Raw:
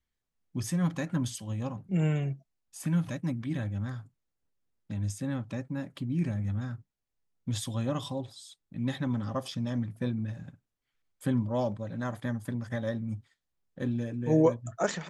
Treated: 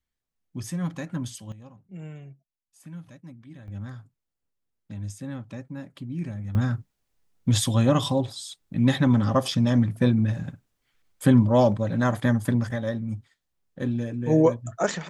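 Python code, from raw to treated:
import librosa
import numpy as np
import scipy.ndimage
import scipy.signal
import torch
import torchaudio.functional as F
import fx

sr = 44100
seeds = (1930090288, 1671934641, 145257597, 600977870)

y = fx.gain(x, sr, db=fx.steps((0.0, -1.0), (1.52, -12.5), (3.68, -2.0), (6.55, 11.0), (12.71, 4.0)))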